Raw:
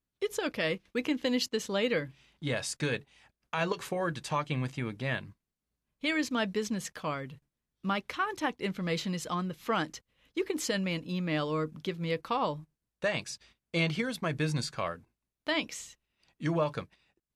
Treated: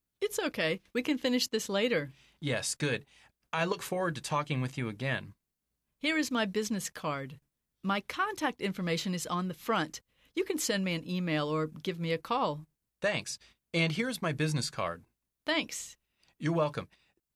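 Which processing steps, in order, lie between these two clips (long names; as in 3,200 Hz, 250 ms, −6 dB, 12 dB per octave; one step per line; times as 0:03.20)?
high-shelf EQ 9,000 Hz +8 dB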